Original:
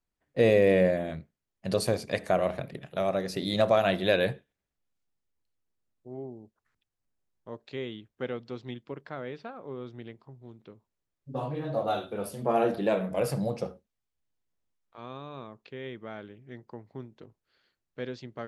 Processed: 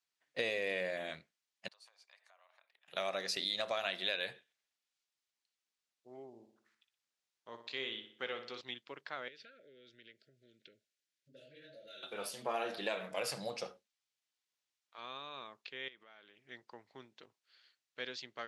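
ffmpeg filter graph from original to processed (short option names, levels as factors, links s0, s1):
-filter_complex "[0:a]asettb=1/sr,asplit=3[s0][s1][s2];[s0]atrim=end=1.684[s3];[s1]atrim=start=1.68:end=2.88,asetpts=PTS-STARTPTS,afade=t=in:d=0.004:c=qsin,afade=t=out:st=1.196:d=0.004:c=qsin,acompressor=threshold=0.0251:ratio=8:attack=3.2:release=140:knee=1:detection=peak,bandpass=f=920:t=q:w=2.2,aderivative[s4];[s2]atrim=start=2.876[s5];[s3][s4]acrossfade=d=0.004:c1=hsin:c2=qsin[s6];[s6][s5]acrossfade=d=0.004:c1=qsin:c2=hsin,asettb=1/sr,asplit=3[s7][s8][s9];[s7]atrim=end=6.274[s10];[s8]atrim=start=6.27:end=8.61,asetpts=PTS-STARTPTS,afade=t=in:d=0.004:c=qsin,afade=t=out:st=2.336:d=0.004:c=qsin,asplit=2[s11][s12];[s12]adelay=18,volume=0.211[s13];[s11][s13]amix=inputs=2:normalize=0,atrim=end_sample=103194,asplit=2[s14][s15];[s15]adelay=60,lowpass=f=4100:p=1,volume=0.376,asplit=2[s16][s17];[s17]adelay=60,lowpass=f=4100:p=1,volume=0.52,asplit=2[s18][s19];[s19]adelay=60,lowpass=f=4100:p=1,volume=0.52,asplit=2[s20][s21];[s21]adelay=60,lowpass=f=4100:p=1,volume=0.52,asplit=2[s22][s23];[s23]adelay=60,lowpass=f=4100:p=1,volume=0.52,asplit=2[s24][s25];[s25]adelay=60,lowpass=f=4100:p=1,volume=0.52[s26];[s14][s16][s18][s20][s22][s24][s26]amix=inputs=7:normalize=0,atrim=end_sample=103194[s27];[s9]atrim=start=8.606[s28];[s10][s27]acrossfade=d=0.004:c1=hsin:c2=qsin[s29];[s29][s28]acrossfade=d=0.004:c1=qsin:c2=hsin,asettb=1/sr,asplit=3[s30][s31][s32];[s30]atrim=end=9.284[s33];[s31]atrim=start=9.28:end=12.03,asetpts=PTS-STARTPTS,afade=t=in:d=0.004:c=qsin,afade=t=out:st=2.746:d=0.004:c=qsin,acompressor=threshold=0.00398:ratio=3:attack=3.2:release=140:knee=1:detection=peak,asuperstop=centerf=950:order=20:qfactor=1.3[s34];[s32]atrim=start=12.026[s35];[s33][s34]acrossfade=d=0.004:c1=hsin:c2=qsin[s36];[s36][s35]acrossfade=d=0.004:c1=qsin:c2=hsin,asettb=1/sr,asplit=3[s37][s38][s39];[s37]atrim=end=15.884[s40];[s38]atrim=start=15.88:end=16.45,asetpts=PTS-STARTPTS,afade=t=in:d=0.004:c=qsin,afade=t=out:st=0.566:d=0.004:c=qsin,lowshelf=f=120:g=-10.5,acompressor=threshold=0.00355:ratio=16:attack=3.2:release=140:knee=1:detection=peak[s41];[s39]atrim=start=16.446[s42];[s40][s41]acrossfade=d=0.004:c1=hsin:c2=qsin[s43];[s43][s42]acrossfade=d=0.004:c1=qsin:c2=hsin,lowpass=4400,aderivative,acompressor=threshold=0.00501:ratio=6,volume=4.73"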